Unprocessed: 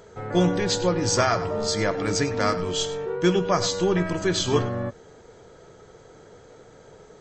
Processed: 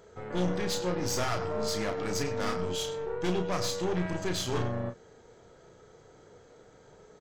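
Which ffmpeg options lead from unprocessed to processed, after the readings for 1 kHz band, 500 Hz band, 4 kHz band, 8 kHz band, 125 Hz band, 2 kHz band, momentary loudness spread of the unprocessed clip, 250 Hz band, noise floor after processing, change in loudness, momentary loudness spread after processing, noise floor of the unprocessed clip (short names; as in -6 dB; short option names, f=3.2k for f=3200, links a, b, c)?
-8.0 dB, -7.5 dB, -8.0 dB, -8.0 dB, -7.5 dB, -8.0 dB, 5 LU, -8.0 dB, -57 dBFS, -8.0 dB, 4 LU, -50 dBFS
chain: -filter_complex "[0:a]aeval=exprs='(tanh(14.1*val(0)+0.65)-tanh(0.65))/14.1':c=same,asplit=2[a][b];[b]adelay=33,volume=-6.5dB[c];[a][c]amix=inputs=2:normalize=0,volume=-4dB"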